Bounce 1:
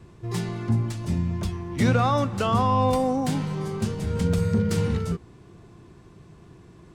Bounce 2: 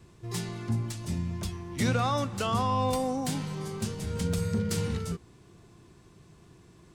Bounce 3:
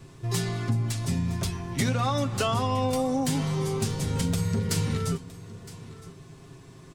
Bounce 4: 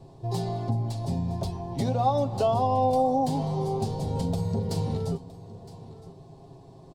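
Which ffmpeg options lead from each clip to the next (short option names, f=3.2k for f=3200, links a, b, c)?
-af "highshelf=f=3.1k:g=9.5,volume=-6.5dB"
-af "aecho=1:1:7.4:0.57,acompressor=threshold=-28dB:ratio=6,aecho=1:1:964:0.126,volume=6dB"
-af "firequalizer=gain_entry='entry(300,0);entry(770,11);entry(1300,-13);entry(2100,-15);entry(4300,-3);entry(6100,-11)':delay=0.05:min_phase=1,volume=-1.5dB"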